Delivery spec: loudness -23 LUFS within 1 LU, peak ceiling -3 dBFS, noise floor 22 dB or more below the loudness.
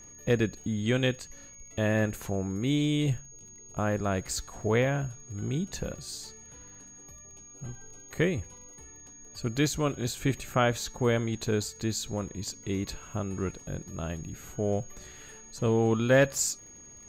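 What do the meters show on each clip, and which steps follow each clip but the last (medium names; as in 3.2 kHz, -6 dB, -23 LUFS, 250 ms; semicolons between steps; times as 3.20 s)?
tick rate 32 per s; steady tone 6.6 kHz; tone level -48 dBFS; loudness -30.0 LUFS; peak level -10.5 dBFS; loudness target -23.0 LUFS
-> de-click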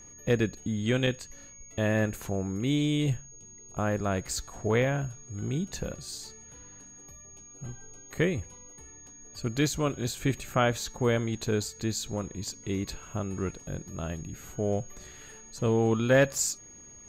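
tick rate 0.059 per s; steady tone 6.6 kHz; tone level -48 dBFS
-> band-stop 6.6 kHz, Q 30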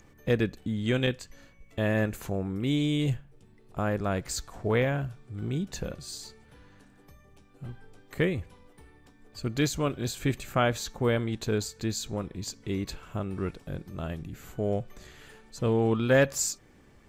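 steady tone not found; loudness -30.0 LUFS; peak level -10.5 dBFS; loudness target -23.0 LUFS
-> trim +7 dB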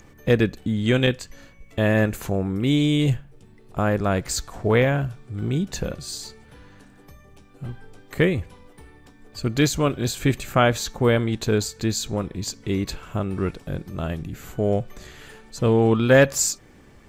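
loudness -23.0 LUFS; peak level -3.5 dBFS; noise floor -51 dBFS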